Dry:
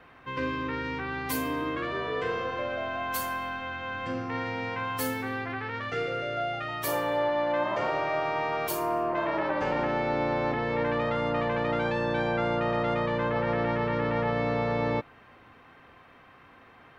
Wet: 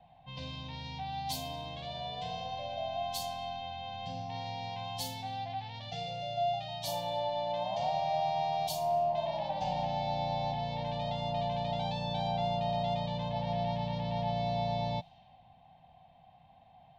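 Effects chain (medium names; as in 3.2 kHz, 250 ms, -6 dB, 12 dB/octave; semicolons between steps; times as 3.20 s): level-controlled noise filter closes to 1.8 kHz, open at -26 dBFS; FFT filter 120 Hz 0 dB, 170 Hz +5 dB, 390 Hz -29 dB, 750 Hz +10 dB, 1.3 kHz -28 dB, 2.4 kHz -8 dB, 3.6 kHz +9 dB, 6.8 kHz +3 dB, 10 kHz -4 dB; trim -3.5 dB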